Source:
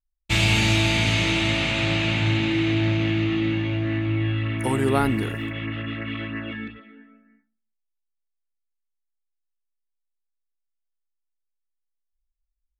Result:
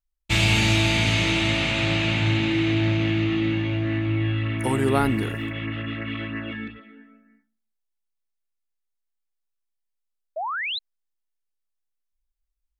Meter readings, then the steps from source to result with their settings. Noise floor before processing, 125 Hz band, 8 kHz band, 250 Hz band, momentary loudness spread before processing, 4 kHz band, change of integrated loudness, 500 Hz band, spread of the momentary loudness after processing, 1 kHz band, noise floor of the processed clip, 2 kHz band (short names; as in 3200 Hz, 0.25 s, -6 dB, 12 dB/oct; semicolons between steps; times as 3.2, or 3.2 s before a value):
-79 dBFS, 0.0 dB, 0.0 dB, 0.0 dB, 11 LU, 0.0 dB, -0.5 dB, 0.0 dB, 12 LU, +1.0 dB, -79 dBFS, 0.0 dB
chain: painted sound rise, 10.36–10.79, 590–4200 Hz -28 dBFS